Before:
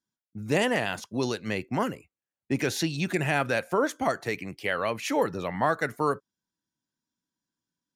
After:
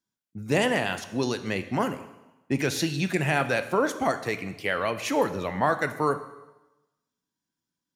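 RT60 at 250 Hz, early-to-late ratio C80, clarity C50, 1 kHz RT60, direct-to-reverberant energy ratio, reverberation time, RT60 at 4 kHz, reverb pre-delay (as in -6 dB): 1.0 s, 14.5 dB, 12.5 dB, 1.0 s, 9.5 dB, 1.0 s, 1.0 s, 6 ms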